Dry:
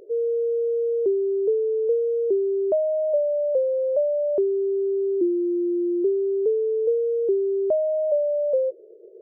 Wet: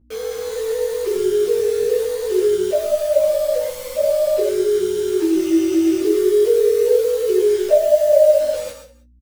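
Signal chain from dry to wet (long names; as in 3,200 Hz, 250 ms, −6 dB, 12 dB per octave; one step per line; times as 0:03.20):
three sine waves on the formant tracks
0:06.01–0:08.39: parametric band 640 Hz +11 dB 0.89 octaves
automatic gain control gain up to 6 dB
bit reduction 5 bits
tuned comb filter 300 Hz, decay 0.18 s, harmonics all, mix 60%
mains hum 60 Hz, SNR 35 dB
double-tracking delay 21 ms −5 dB
single-tap delay 183 ms −19 dB
reverb whose tail is shaped and stops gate 150 ms rising, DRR 5.5 dB
string-ensemble chorus
level +5 dB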